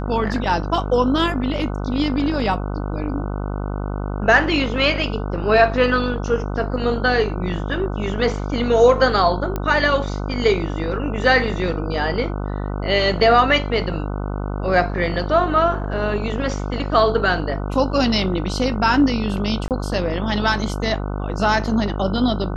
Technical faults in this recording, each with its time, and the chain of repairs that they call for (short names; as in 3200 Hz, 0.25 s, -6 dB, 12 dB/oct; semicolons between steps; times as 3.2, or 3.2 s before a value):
buzz 50 Hz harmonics 30 -25 dBFS
9.56 pop -11 dBFS
19.68–19.71 gap 28 ms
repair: de-click; de-hum 50 Hz, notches 30; interpolate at 19.68, 28 ms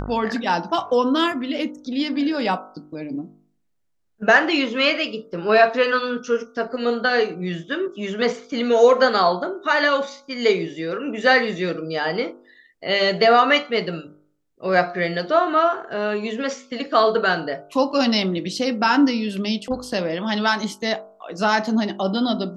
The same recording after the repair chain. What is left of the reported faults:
none